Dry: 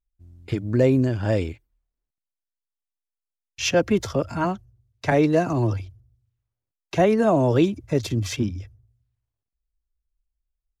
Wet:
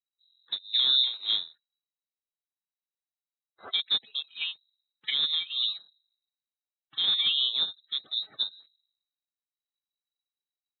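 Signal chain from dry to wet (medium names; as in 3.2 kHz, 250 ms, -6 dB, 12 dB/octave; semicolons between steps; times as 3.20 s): coarse spectral quantiser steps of 30 dB; peak limiter -13 dBFS, peak gain reduction 6 dB; frequency inversion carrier 3.9 kHz; high-pass 120 Hz 24 dB/octave; upward expansion 2.5:1, over -31 dBFS; trim -2.5 dB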